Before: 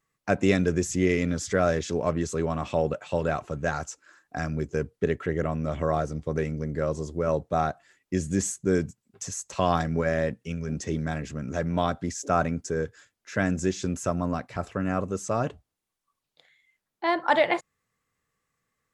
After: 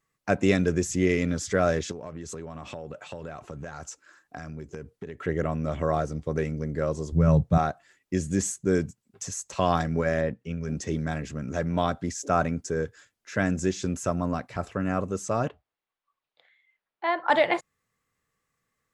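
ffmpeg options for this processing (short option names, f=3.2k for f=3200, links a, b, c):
-filter_complex "[0:a]asettb=1/sr,asplit=3[a][b][c];[a]atrim=end=1.914[d];[b]atrim=start=1.91:end=5.23,asetpts=PTS-STARTPTS,afade=t=in:d=0.004:c=qsin,afade=t=out:st=3.316:d=0.004:c=qsin,acompressor=threshold=-33dB:ratio=12:attack=3.2:release=140:knee=1:detection=peak[e];[c]atrim=start=5.226[f];[d][e]acrossfade=d=0.004:c1=hsin:c2=qsin[g];[g][f]acrossfade=d=0.004:c1=qsin:c2=hsin,asettb=1/sr,asplit=3[h][i][j];[h]atrim=end=7.124[k];[i]atrim=start=7.12:end=7.58,asetpts=PTS-STARTPTS,afade=t=in:d=0.004:c=qsin,afade=t=out:st=0.456:d=0.004:c=qsin,lowshelf=f=230:t=q:w=1.5:g=12[l];[j]atrim=start=7.576[m];[k][l]acrossfade=d=0.004:c1=hsin:c2=qsin[n];[n][m]acrossfade=d=0.004:c1=qsin:c2=hsin,asettb=1/sr,asplit=3[o][p][q];[o]atrim=end=10.214[r];[p]atrim=start=10.21:end=10.63,asetpts=PTS-STARTPTS,afade=t=in:d=0.004:c=qsin,afade=t=out:st=0.416:d=0.004:c=qsin,aemphasis=mode=reproduction:type=75kf[s];[q]atrim=start=10.626[t];[r][s]acrossfade=d=0.004:c1=hsin:c2=qsin[u];[u][t]acrossfade=d=0.004:c1=qsin:c2=hsin,asettb=1/sr,asplit=3[v][w][x];[v]atrim=end=15.484[y];[w]atrim=start=15.48:end=17.3,asetpts=PTS-STARTPTS,afade=t=in:d=0.004:c=qsin,afade=t=out:st=1.816:d=0.004:c=qsin,acrossover=split=430 3800:gain=0.251 1 0.0891[z][aa][ab];[z][aa][ab]amix=inputs=3:normalize=0[ac];[x]atrim=start=17.296[ad];[y][ac]acrossfade=d=0.004:c1=hsin:c2=qsin[ae];[ae][ad]acrossfade=d=0.004:c1=qsin:c2=hsin"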